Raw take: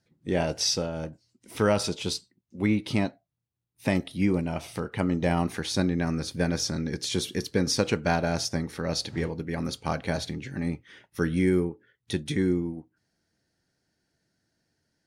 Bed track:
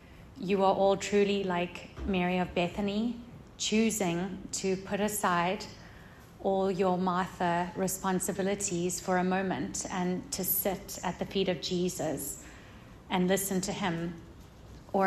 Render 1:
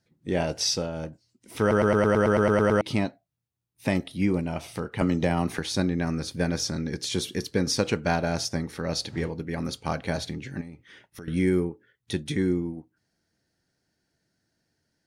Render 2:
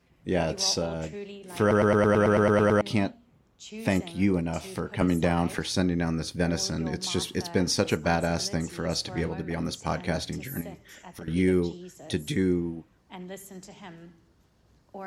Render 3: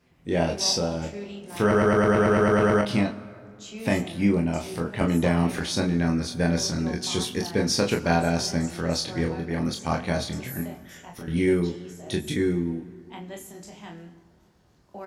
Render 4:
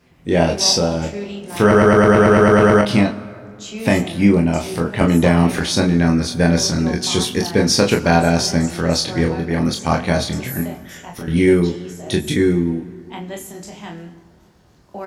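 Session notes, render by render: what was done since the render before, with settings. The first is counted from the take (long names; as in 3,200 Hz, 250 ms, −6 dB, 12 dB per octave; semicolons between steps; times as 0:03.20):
0:01.60: stutter in place 0.11 s, 11 plays; 0:05.01–0:05.59: multiband upward and downward compressor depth 100%; 0:10.61–0:11.28: downward compressor 5 to 1, threshold −39 dBFS
mix in bed track −13 dB
ambience of single reflections 24 ms −4 dB, 40 ms −7 dB; dense smooth reverb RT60 2.5 s, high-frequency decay 0.5×, DRR 14.5 dB
level +8.5 dB; brickwall limiter −1 dBFS, peak gain reduction 2 dB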